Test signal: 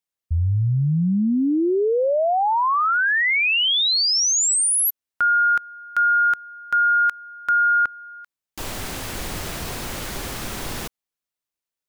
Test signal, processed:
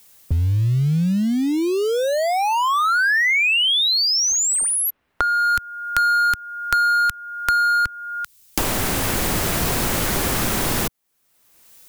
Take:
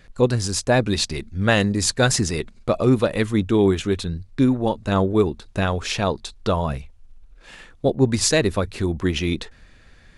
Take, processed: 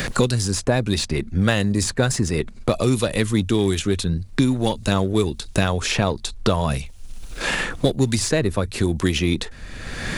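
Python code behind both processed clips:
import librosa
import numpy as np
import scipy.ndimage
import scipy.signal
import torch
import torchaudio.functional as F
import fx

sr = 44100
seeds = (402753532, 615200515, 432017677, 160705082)

p1 = fx.low_shelf(x, sr, hz=200.0, db=4.5)
p2 = np.clip(p1, -10.0 ** (-19.5 / 20.0), 10.0 ** (-19.5 / 20.0))
p3 = p1 + (p2 * librosa.db_to_amplitude(-12.0))
p4 = fx.rider(p3, sr, range_db=5, speed_s=2.0)
p5 = fx.high_shelf(p4, sr, hz=6300.0, db=10.0)
p6 = fx.band_squash(p5, sr, depth_pct=100)
y = p6 * librosa.db_to_amplitude(-4.0)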